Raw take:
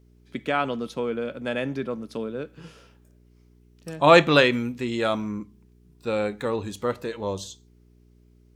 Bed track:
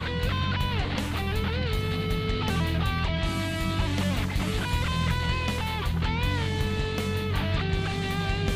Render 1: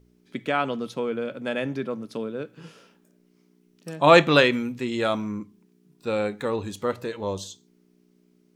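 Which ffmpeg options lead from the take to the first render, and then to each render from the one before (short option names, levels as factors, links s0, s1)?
-af "bandreject=f=60:t=h:w=4,bandreject=f=120:t=h:w=4"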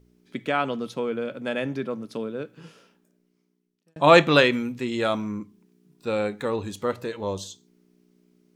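-filter_complex "[0:a]asplit=2[s0][s1];[s0]atrim=end=3.96,asetpts=PTS-STARTPTS,afade=t=out:st=2.4:d=1.56[s2];[s1]atrim=start=3.96,asetpts=PTS-STARTPTS,afade=t=in:d=0.004:c=hsin[s3];[s2][s3]concat=n=2:v=0:a=1"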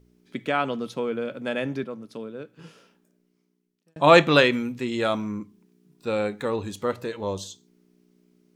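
-filter_complex "[0:a]asplit=3[s0][s1][s2];[s0]atrim=end=1.842[s3];[s1]atrim=start=1.838:end=2.592,asetpts=PTS-STARTPTS,volume=0.562[s4];[s2]atrim=start=2.588[s5];[s3][s4]acrossfade=d=0.004:c1=hsin:c2=hsin[s6];[s6][s5]acrossfade=d=0.004:c1=hsin:c2=hsin"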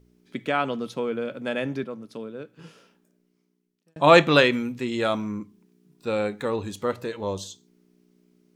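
-af anull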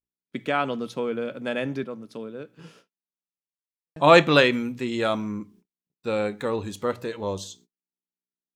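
-af "agate=range=0.00708:threshold=0.00224:ratio=16:detection=peak"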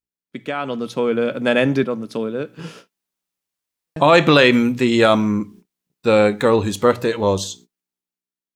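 -af "alimiter=limit=0.2:level=0:latency=1:release=104,dynaudnorm=f=180:g=11:m=5.01"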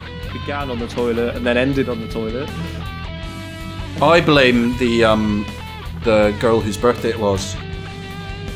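-filter_complex "[1:a]volume=0.841[s0];[0:a][s0]amix=inputs=2:normalize=0"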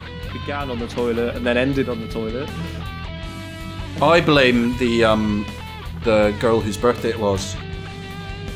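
-af "volume=0.794"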